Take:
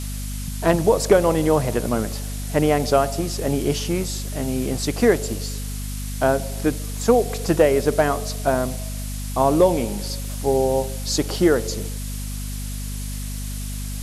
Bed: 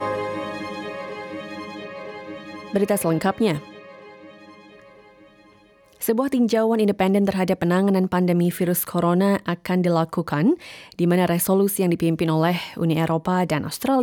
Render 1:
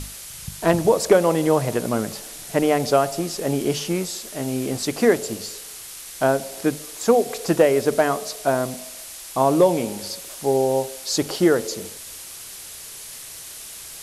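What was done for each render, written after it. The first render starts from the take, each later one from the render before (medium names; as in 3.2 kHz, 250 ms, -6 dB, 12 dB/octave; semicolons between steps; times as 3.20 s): hum notches 50/100/150/200/250 Hz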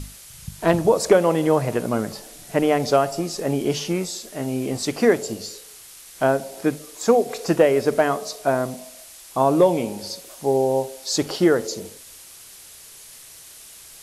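noise print and reduce 6 dB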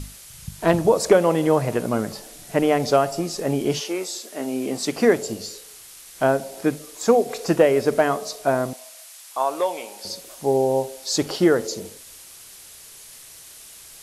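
3.79–4.95 s: high-pass 360 Hz -> 140 Hz 24 dB/octave; 8.73–10.05 s: high-pass 780 Hz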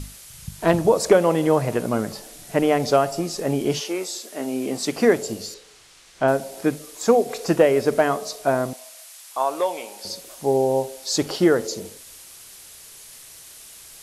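5.54–6.28 s: distance through air 87 m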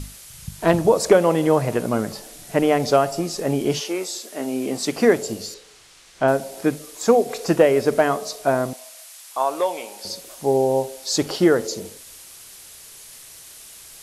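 trim +1 dB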